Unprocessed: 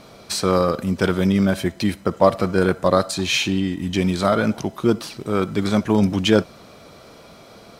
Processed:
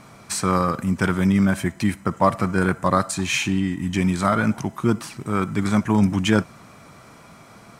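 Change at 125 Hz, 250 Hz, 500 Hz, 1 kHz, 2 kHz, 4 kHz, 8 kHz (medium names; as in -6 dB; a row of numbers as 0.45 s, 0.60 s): +1.0 dB, -0.5 dB, -6.5 dB, +1.0 dB, +0.5 dB, -5.5 dB, +1.0 dB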